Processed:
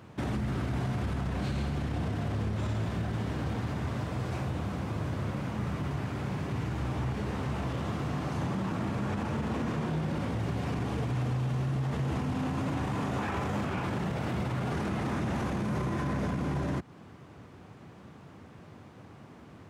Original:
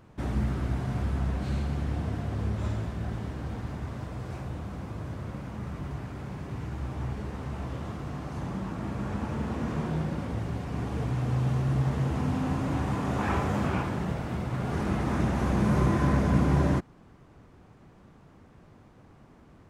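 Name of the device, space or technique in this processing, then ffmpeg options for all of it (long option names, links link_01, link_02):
broadcast voice chain: -af "highpass=frequency=76:width=0.5412,highpass=frequency=76:width=1.3066,deesser=1,acompressor=threshold=-30dB:ratio=3,equalizer=frequency=3100:width_type=o:width=1.4:gain=3,alimiter=level_in=4.5dB:limit=-24dB:level=0:latency=1:release=23,volume=-4.5dB,volume=4.5dB"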